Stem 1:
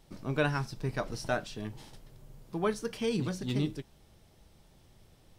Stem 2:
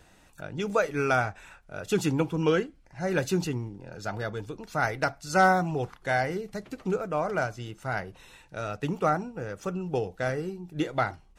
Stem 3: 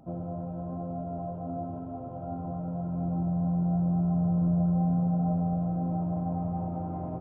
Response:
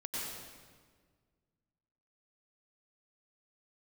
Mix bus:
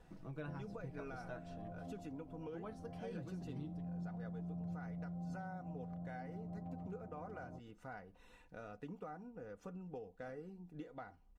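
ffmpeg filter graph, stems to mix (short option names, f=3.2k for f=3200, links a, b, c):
-filter_complex "[0:a]aecho=1:1:6.1:0.65,volume=-6.5dB[a];[1:a]aecho=1:1:4.1:0.53,alimiter=limit=-19dB:level=0:latency=1:release=370,volume=-8dB,asplit=2[b][c];[2:a]adelay=400,volume=1dB[d];[c]apad=whole_len=335232[e];[d][e]sidechaincompress=threshold=-43dB:ratio=8:attack=16:release=1080[f];[a][b][f]amix=inputs=3:normalize=0,highshelf=f=2.1k:g=-12,acompressor=threshold=-53dB:ratio=2"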